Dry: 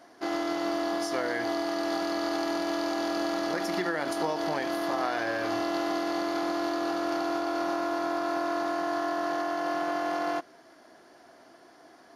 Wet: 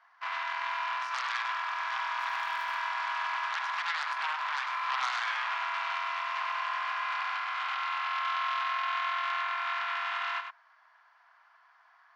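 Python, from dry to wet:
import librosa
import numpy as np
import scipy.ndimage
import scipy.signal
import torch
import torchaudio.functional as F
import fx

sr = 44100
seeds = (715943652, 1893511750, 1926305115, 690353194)

y = scipy.signal.sosfilt(scipy.signal.butter(2, 1900.0, 'lowpass', fs=sr, output='sos'), x)
y = fx.cheby_harmonics(y, sr, harmonics=(8,), levels_db=(-12,), full_scale_db=-15.0)
y = scipy.signal.sosfilt(scipy.signal.ellip(4, 1.0, 80, 980.0, 'highpass', fs=sr, output='sos'), y)
y = fx.dmg_crackle(y, sr, seeds[0], per_s=180.0, level_db=-43.0, at=(2.19, 2.77), fade=0.02)
y = y + 10.0 ** (-7.5 / 20.0) * np.pad(y, (int(102 * sr / 1000.0), 0))[:len(y)]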